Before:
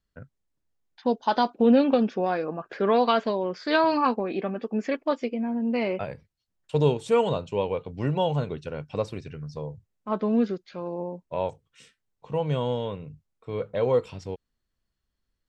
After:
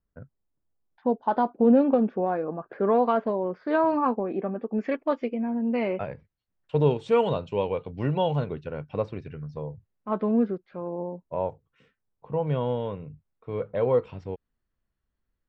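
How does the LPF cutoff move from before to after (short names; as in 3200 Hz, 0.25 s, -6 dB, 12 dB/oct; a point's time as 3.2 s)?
1200 Hz
from 4.78 s 2400 Hz
from 6.91 s 3700 Hz
from 8.44 s 2300 Hz
from 10.31 s 1400 Hz
from 12.47 s 2200 Hz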